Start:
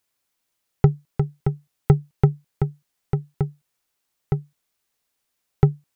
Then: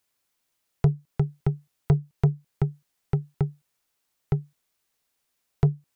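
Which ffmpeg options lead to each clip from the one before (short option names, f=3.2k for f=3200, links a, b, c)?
-filter_complex "[0:a]acrossover=split=510[a][b];[a]asoftclip=type=tanh:threshold=-12.5dB[c];[b]acompressor=threshold=-39dB:ratio=6[d];[c][d]amix=inputs=2:normalize=0"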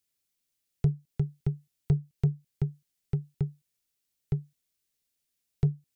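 -af "equalizer=f=970:t=o:w=2:g=-12.5,volume=-3.5dB"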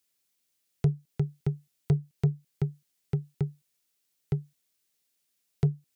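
-af "highpass=f=180:p=1,volume=4.5dB"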